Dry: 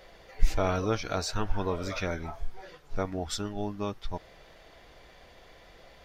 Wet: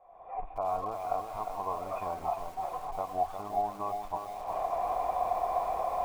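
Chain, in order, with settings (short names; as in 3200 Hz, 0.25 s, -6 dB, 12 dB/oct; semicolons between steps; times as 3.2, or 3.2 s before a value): recorder AGC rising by 54 dB/s; high shelf 3000 Hz +7 dB; short-mantissa float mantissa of 2-bit; vocal tract filter a; lo-fi delay 0.355 s, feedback 55%, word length 9-bit, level -6 dB; gain +4 dB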